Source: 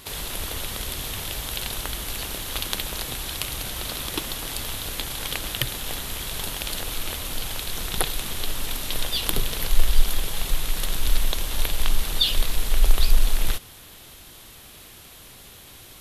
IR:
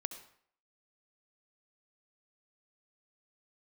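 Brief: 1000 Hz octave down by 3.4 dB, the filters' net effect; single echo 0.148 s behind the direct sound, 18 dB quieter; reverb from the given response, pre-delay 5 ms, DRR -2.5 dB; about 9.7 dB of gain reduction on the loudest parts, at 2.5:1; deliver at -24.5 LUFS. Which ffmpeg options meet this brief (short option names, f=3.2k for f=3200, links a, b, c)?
-filter_complex "[0:a]equalizer=f=1k:t=o:g=-4.5,acompressor=threshold=-23dB:ratio=2.5,aecho=1:1:148:0.126,asplit=2[a][b];[1:a]atrim=start_sample=2205,adelay=5[c];[b][c]afir=irnorm=-1:irlink=0,volume=3.5dB[d];[a][d]amix=inputs=2:normalize=0,volume=1dB"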